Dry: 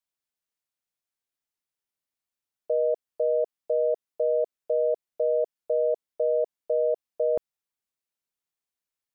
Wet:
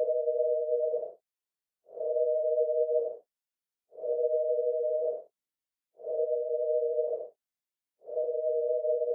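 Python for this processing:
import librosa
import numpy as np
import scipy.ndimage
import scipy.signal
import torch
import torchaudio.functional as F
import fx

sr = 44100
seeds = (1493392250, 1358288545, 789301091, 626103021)

y = fx.paulstretch(x, sr, seeds[0], factor=4.1, window_s=0.1, from_s=4.7)
y = y * 10.0 ** (-5.0 / 20.0)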